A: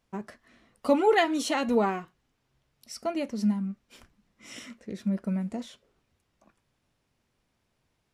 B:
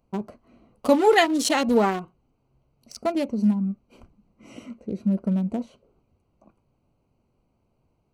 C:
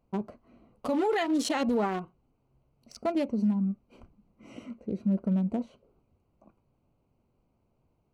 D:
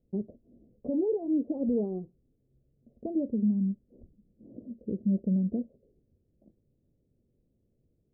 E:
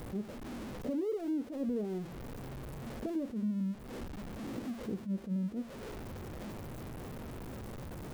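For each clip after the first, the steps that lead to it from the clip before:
adaptive Wiener filter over 25 samples; high-shelf EQ 4,800 Hz +10 dB; in parallel at −3 dB: downward compressor, threshold −31 dBFS, peak gain reduction 14 dB; on the sum: level +3 dB
high-shelf EQ 4,900 Hz −9 dB; brickwall limiter −17.5 dBFS, peak gain reduction 11 dB; level −2.5 dB
Butterworth low-pass 530 Hz 36 dB per octave
converter with a step at zero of −40.5 dBFS; downward compressor 2.5 to 1, threshold −40 dBFS, peak gain reduction 12 dB; level that may rise only so fast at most 210 dB per second; level +3 dB

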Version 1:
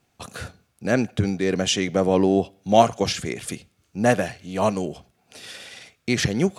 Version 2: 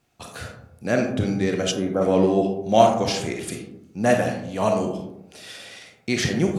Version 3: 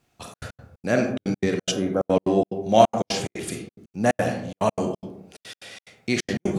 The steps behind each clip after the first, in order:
on a send at −2 dB: convolution reverb RT60 0.90 s, pre-delay 4 ms; on the sum: gain on a spectral selection 0:01.71–0:02.02, 1,700–9,800 Hz −15 dB; level −2 dB
gate pattern "xxxx.x.xx." 179 BPM −60 dB

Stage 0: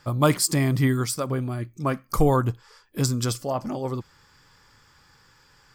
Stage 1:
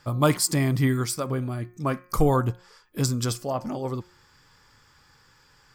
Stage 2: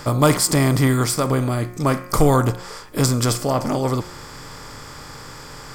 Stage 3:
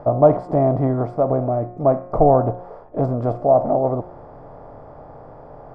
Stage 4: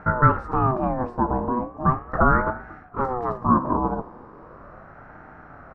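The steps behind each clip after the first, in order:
hum removal 179.3 Hz, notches 14; level −1 dB
compressor on every frequency bin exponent 0.6; level +3.5 dB
low-pass with resonance 680 Hz, resonance Q 6.9; level −4 dB
double-tracking delay 18 ms −13 dB; single-tap delay 222 ms −24 dB; ring modulator whose carrier an LFO sweeps 550 Hz, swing 40%, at 0.38 Hz; level −1.5 dB

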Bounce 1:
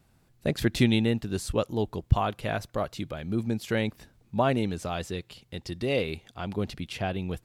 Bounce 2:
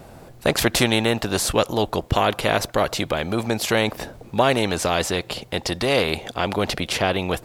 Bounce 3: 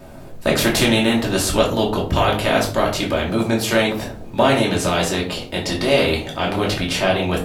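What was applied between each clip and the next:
parametric band 580 Hz +13 dB 1.6 octaves; every bin compressed towards the loudest bin 2 to 1
convolution reverb RT60 0.45 s, pre-delay 3 ms, DRR −2.5 dB; level −2 dB

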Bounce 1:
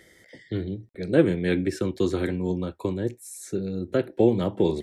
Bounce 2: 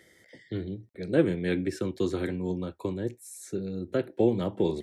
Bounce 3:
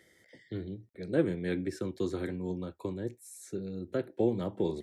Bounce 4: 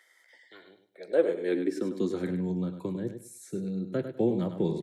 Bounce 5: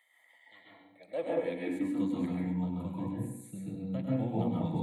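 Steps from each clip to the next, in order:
high-pass filter 68 Hz; level −4 dB
dynamic equaliser 2,800 Hz, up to −5 dB, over −57 dBFS, Q 2.9; level −4.5 dB
high-pass filter sweep 1,000 Hz → 150 Hz, 0:00.59–0:02.32; repeating echo 100 ms, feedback 22%, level −9 dB
phaser with its sweep stopped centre 1,500 Hz, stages 6; convolution reverb RT60 0.75 s, pre-delay 129 ms, DRR −5 dB; level −3.5 dB

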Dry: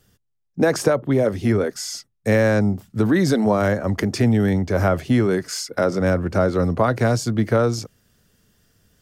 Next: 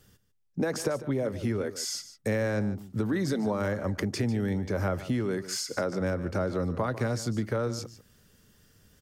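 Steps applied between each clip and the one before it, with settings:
notch filter 690 Hz, Q 12
downward compressor 2.5 to 1, threshold −31 dBFS, peak gain reduction 12.5 dB
single-tap delay 148 ms −14.5 dB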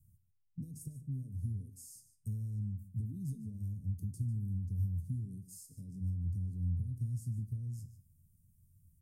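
elliptic band-stop filter 150–9,400 Hz, stop band 80 dB
high-shelf EQ 4,500 Hz −6.5 dB
tuned comb filter 87 Hz, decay 0.34 s, harmonics odd, mix 70%
level +5.5 dB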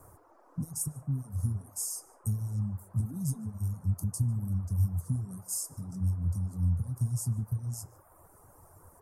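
flat-topped bell 7,700 Hz +11 dB
noise in a band 270–1,200 Hz −67 dBFS
reverb reduction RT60 0.79 s
level +8 dB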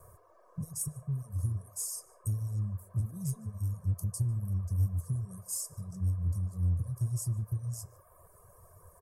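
comb filter 1.8 ms, depth 99%
in parallel at −9.5 dB: hard clipping −26.5 dBFS, distortion −8 dB
on the sum: level −7 dB

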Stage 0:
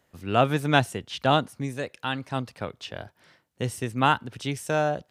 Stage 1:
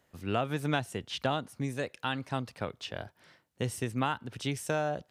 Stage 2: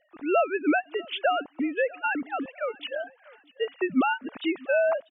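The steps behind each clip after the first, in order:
downward compressor 6 to 1, threshold −24 dBFS, peak gain reduction 10.5 dB; level −2 dB
three sine waves on the formant tracks; repeating echo 643 ms, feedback 33%, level −23 dB; level +6.5 dB

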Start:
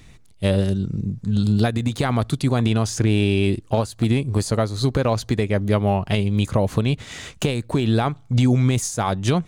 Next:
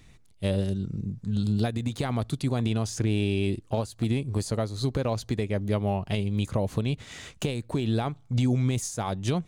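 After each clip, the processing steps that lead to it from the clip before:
dynamic equaliser 1,400 Hz, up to −4 dB, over −36 dBFS, Q 1.2
level −7 dB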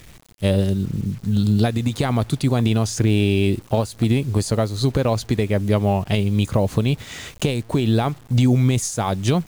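bit reduction 9 bits
level +8 dB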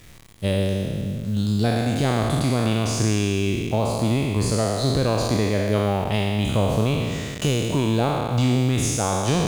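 peak hold with a decay on every bin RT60 2.13 s
level −5 dB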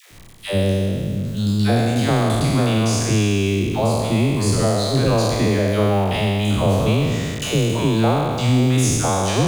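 all-pass dispersion lows, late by 115 ms, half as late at 550 Hz
level +3.5 dB

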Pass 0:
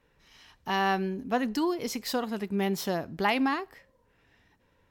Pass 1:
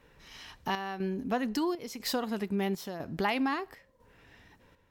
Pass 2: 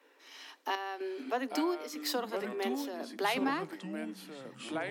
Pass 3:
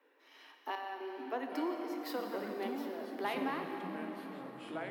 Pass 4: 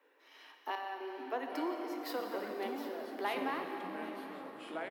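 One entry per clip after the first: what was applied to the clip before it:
downward compressor 2 to 1, threshold −42 dBFS, peak gain reduction 11.5 dB; square-wave tremolo 1 Hz, depth 60%, duty 75%; level +7 dB
Butterworth high-pass 260 Hz 96 dB per octave; delay with pitch and tempo change per echo 668 ms, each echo −4 semitones, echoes 3, each echo −6 dB; level −1.5 dB
parametric band 7,000 Hz −12.5 dB 1.6 octaves; dense smooth reverb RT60 4.9 s, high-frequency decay 0.7×, DRR 3 dB; level −5 dB
high-pass filter 290 Hz 12 dB per octave; single-tap delay 763 ms −16.5 dB; level +1 dB

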